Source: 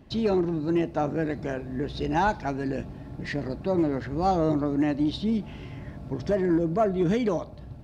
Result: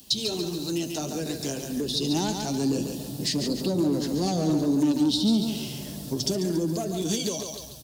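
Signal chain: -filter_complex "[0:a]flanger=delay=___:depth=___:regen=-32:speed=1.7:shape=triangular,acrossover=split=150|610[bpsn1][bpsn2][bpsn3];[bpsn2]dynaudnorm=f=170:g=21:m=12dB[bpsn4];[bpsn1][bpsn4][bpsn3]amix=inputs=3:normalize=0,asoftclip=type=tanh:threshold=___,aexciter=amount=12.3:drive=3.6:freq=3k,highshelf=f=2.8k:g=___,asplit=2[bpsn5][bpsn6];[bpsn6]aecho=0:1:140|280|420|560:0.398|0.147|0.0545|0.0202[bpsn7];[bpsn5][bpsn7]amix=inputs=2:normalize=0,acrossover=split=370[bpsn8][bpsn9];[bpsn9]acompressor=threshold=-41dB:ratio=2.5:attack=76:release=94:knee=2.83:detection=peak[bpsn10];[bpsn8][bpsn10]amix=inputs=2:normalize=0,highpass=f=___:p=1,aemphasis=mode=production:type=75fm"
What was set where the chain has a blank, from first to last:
3.7, 4.3, -15dB, -2.5, 79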